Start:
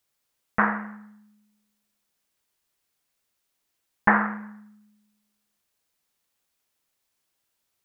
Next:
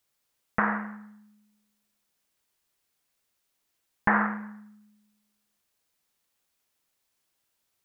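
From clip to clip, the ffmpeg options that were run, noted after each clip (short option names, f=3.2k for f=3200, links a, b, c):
-af "alimiter=limit=-9.5dB:level=0:latency=1:release=139"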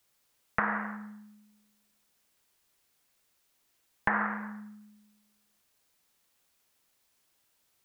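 -filter_complex "[0:a]acrossover=split=400|1600[a][b][c];[a]acompressor=threshold=-44dB:ratio=4[d];[b]acompressor=threshold=-35dB:ratio=4[e];[c]acompressor=threshold=-38dB:ratio=4[f];[d][e][f]amix=inputs=3:normalize=0,volume=4.5dB"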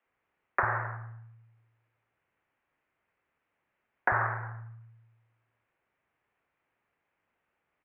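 -filter_complex "[0:a]highpass=f=150:t=q:w=0.5412,highpass=f=150:t=q:w=1.307,lowpass=f=2.5k:t=q:w=0.5176,lowpass=f=2.5k:t=q:w=0.7071,lowpass=f=2.5k:t=q:w=1.932,afreqshift=-96,acrossover=split=210[a][b];[a]adelay=40[c];[c][b]amix=inputs=2:normalize=0,volume=1.5dB"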